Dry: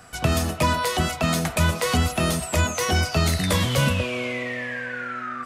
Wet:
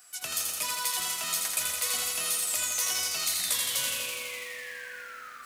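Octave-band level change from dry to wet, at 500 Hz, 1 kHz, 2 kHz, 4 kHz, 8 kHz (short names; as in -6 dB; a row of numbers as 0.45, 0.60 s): -19.0, -13.0, -9.0, -3.0, +3.0 dB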